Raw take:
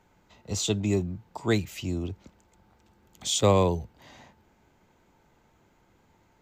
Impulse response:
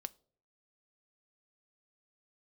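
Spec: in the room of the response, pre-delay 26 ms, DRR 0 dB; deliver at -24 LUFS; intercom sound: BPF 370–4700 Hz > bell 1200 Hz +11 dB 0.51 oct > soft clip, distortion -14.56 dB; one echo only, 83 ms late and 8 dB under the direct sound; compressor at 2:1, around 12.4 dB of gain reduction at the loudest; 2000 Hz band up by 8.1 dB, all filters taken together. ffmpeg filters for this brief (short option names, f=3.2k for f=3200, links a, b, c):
-filter_complex "[0:a]equalizer=f=2k:t=o:g=8,acompressor=threshold=-39dB:ratio=2,aecho=1:1:83:0.398,asplit=2[a][b];[1:a]atrim=start_sample=2205,adelay=26[c];[b][c]afir=irnorm=-1:irlink=0,volume=3.5dB[d];[a][d]amix=inputs=2:normalize=0,highpass=370,lowpass=4.7k,equalizer=f=1.2k:t=o:w=0.51:g=11,asoftclip=threshold=-24.5dB,volume=12.5dB"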